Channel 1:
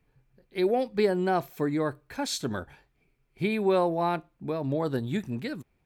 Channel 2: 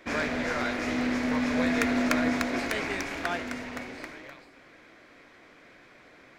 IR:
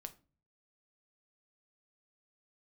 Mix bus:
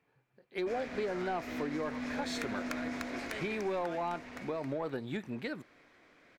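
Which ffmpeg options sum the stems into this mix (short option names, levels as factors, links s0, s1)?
-filter_complex "[0:a]highpass=100,asplit=2[s0][s1];[s1]highpass=f=720:p=1,volume=5.62,asoftclip=type=tanh:threshold=0.237[s2];[s0][s2]amix=inputs=2:normalize=0,lowpass=f=1900:p=1,volume=0.501,volume=0.531[s3];[1:a]adelay=600,volume=0.376[s4];[s3][s4]amix=inputs=2:normalize=0,acompressor=threshold=0.02:ratio=3"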